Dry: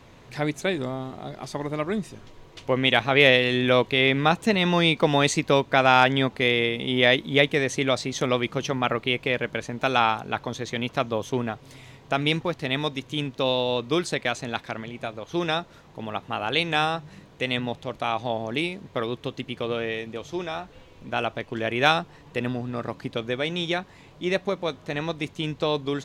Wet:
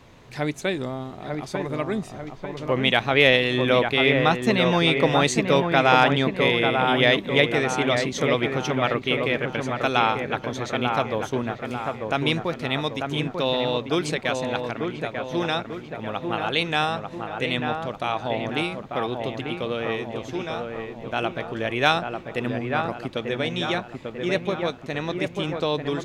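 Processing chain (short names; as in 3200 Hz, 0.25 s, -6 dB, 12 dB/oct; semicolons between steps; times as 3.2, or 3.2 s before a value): dark delay 0.893 s, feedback 49%, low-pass 2000 Hz, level -4.5 dB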